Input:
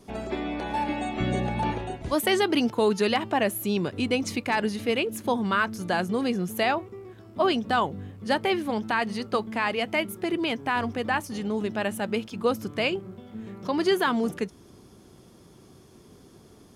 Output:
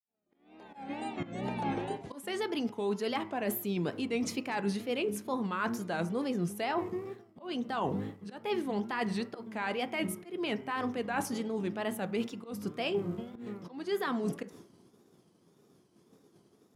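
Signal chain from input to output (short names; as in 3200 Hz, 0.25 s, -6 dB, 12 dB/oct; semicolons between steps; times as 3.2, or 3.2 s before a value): opening faded in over 3.94 s; expander -40 dBFS; HPF 180 Hz 12 dB/oct; low shelf 470 Hz +4.5 dB; reverse; compressor 16:1, threshold -33 dBFS, peak gain reduction 18 dB; reverse; auto swell 0.214 s; wow and flutter 130 cents; on a send: reverb RT60 0.45 s, pre-delay 3 ms, DRR 10 dB; on the sum: gain +3.5 dB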